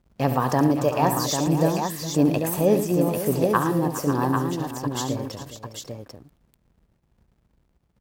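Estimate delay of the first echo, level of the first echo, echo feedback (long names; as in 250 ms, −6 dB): 69 ms, −11.0 dB, repeats not evenly spaced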